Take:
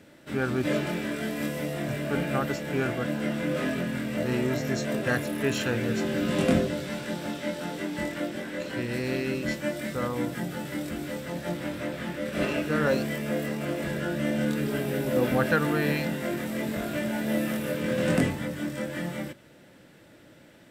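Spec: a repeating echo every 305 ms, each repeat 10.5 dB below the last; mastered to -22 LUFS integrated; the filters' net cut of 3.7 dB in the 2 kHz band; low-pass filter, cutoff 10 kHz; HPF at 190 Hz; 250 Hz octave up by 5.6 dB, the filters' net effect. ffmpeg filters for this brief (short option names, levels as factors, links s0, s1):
-af "highpass=190,lowpass=10000,equalizer=f=250:t=o:g=8.5,equalizer=f=2000:t=o:g=-5,aecho=1:1:305|610|915:0.299|0.0896|0.0269,volume=1.5"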